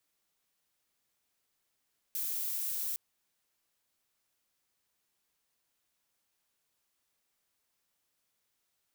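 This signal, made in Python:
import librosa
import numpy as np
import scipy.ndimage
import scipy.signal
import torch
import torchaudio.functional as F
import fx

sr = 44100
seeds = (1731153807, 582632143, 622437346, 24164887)

y = fx.noise_colour(sr, seeds[0], length_s=0.81, colour='violet', level_db=-35.0)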